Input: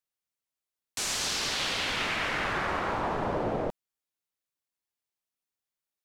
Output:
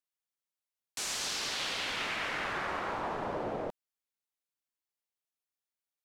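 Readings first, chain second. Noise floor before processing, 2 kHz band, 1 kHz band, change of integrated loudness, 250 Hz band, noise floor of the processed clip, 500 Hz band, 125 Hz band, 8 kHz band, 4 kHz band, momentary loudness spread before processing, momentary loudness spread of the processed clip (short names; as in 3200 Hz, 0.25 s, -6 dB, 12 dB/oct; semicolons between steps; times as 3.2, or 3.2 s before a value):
under -85 dBFS, -4.5 dB, -5.0 dB, -5.0 dB, -7.0 dB, under -85 dBFS, -5.5 dB, -9.5 dB, -4.5 dB, -4.5 dB, 5 LU, 5 LU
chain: low shelf 180 Hz -7.5 dB; gain -4.5 dB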